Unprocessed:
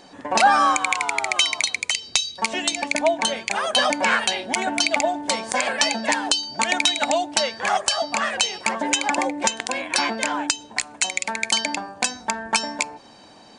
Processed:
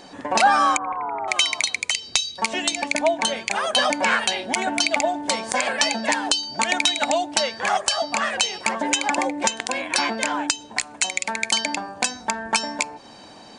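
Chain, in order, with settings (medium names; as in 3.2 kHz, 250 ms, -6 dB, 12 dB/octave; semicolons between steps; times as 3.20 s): 0.77–1.28 s: low-pass 1.2 kHz 24 dB/octave; in parallel at -2 dB: compression, threshold -33 dBFS, peak gain reduction 20 dB; on the sum: trim -1.5 dB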